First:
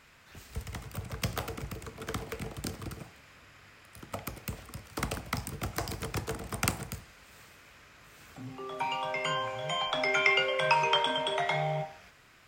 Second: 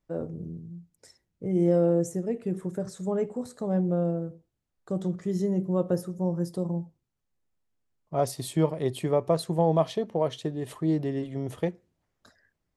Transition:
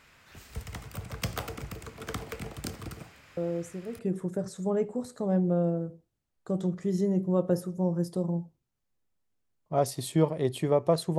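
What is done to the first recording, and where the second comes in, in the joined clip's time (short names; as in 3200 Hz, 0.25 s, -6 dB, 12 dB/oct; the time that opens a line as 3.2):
first
3.37 add second from 1.78 s 0.62 s -8.5 dB
3.99 switch to second from 2.4 s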